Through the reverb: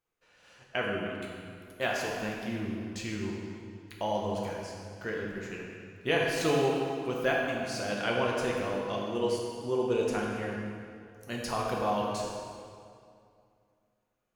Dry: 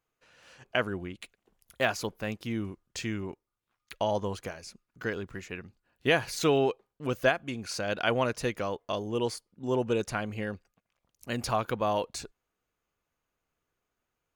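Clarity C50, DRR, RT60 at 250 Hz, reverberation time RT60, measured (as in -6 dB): 0.0 dB, -3.0 dB, 2.5 s, 2.4 s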